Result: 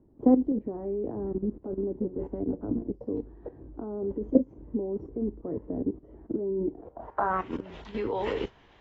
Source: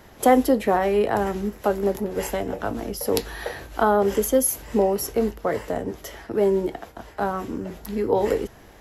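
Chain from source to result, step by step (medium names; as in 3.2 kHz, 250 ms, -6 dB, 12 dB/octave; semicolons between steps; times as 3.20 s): graphic EQ with 31 bands 200 Hz -4 dB, 1 kHz +6 dB, 6.3 kHz +3 dB; level held to a coarse grid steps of 15 dB; low-pass sweep 300 Hz -> 3.2 kHz, 6.72–7.54 s; AAC 24 kbps 24 kHz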